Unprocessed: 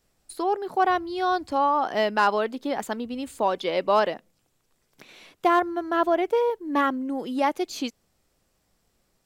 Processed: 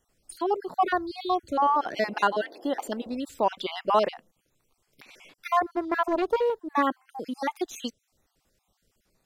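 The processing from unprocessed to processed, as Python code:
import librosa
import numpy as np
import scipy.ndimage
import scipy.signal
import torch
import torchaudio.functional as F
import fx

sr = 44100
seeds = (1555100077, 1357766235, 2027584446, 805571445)

y = fx.spec_dropout(x, sr, seeds[0], share_pct=39)
y = fx.dmg_noise_band(y, sr, seeds[1], low_hz=270.0, high_hz=750.0, level_db=-48.0, at=(1.56, 3.16), fade=0.02)
y = fx.doppler_dist(y, sr, depth_ms=0.25, at=(5.74, 6.73))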